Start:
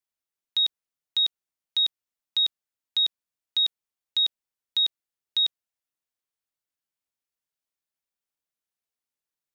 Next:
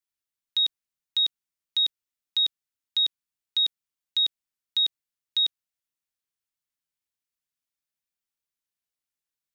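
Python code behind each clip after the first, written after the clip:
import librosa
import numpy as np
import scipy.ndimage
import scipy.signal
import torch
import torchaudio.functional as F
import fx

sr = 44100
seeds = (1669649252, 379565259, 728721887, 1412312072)

y = fx.peak_eq(x, sr, hz=610.0, db=-7.0, octaves=1.7)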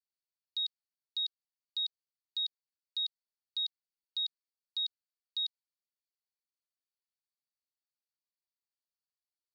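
y = fx.bandpass_q(x, sr, hz=4500.0, q=9.0)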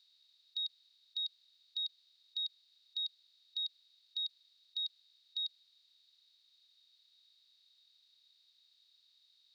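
y = fx.bin_compress(x, sr, power=0.4)
y = y * 10.0 ** (-4.0 / 20.0)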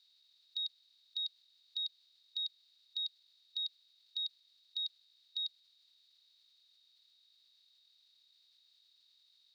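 y = fx.level_steps(x, sr, step_db=11)
y = y * 10.0 ** (7.5 / 20.0)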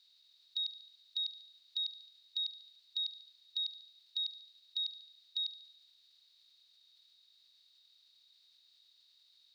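y = fx.echo_feedback(x, sr, ms=72, feedback_pct=58, wet_db=-12.0)
y = y * 10.0 ** (2.0 / 20.0)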